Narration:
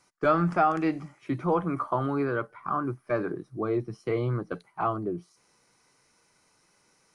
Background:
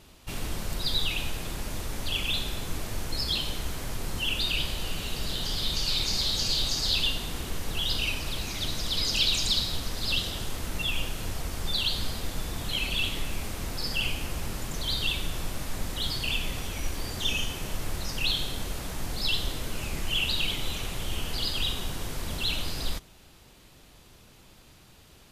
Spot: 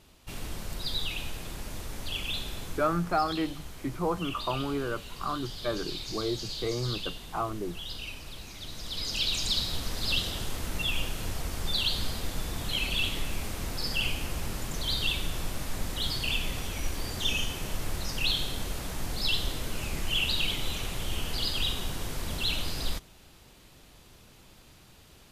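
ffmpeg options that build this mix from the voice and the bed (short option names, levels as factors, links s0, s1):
-filter_complex "[0:a]adelay=2550,volume=0.631[s0];[1:a]volume=1.88,afade=t=out:st=2.64:d=0.39:silence=0.501187,afade=t=in:st=8.64:d=1.28:silence=0.316228[s1];[s0][s1]amix=inputs=2:normalize=0"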